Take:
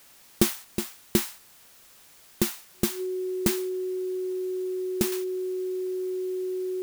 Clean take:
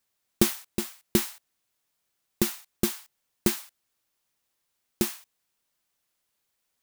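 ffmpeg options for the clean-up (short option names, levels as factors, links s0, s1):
-af "bandreject=f=370:w=30,afwtdn=0.002,asetnsamples=n=441:p=0,asendcmd='5.12 volume volume -8dB',volume=1"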